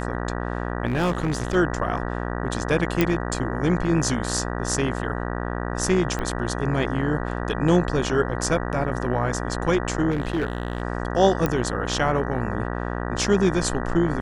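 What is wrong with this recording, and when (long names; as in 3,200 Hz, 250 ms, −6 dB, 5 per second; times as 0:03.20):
mains buzz 60 Hz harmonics 32 −28 dBFS
0:00.87–0:01.56: clipping −18.5 dBFS
0:03.01: click −6 dBFS
0:06.19: click −15 dBFS
0:10.10–0:10.82: clipping −19.5 dBFS
0:11.46: click −9 dBFS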